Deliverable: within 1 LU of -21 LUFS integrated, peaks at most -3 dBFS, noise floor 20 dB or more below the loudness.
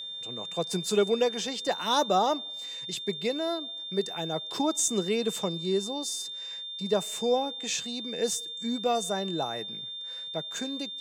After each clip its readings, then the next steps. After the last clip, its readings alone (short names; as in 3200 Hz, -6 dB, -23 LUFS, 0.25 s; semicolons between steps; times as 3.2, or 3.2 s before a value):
steady tone 3600 Hz; tone level -36 dBFS; loudness -29.5 LUFS; peak -12.5 dBFS; loudness target -21.0 LUFS
-> notch 3600 Hz, Q 30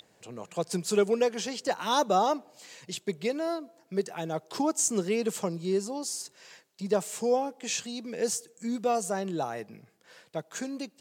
steady tone none; loudness -30.0 LUFS; peak -13.0 dBFS; loudness target -21.0 LUFS
-> gain +9 dB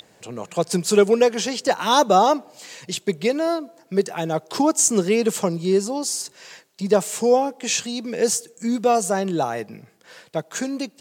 loudness -21.0 LUFS; peak -4.0 dBFS; noise floor -56 dBFS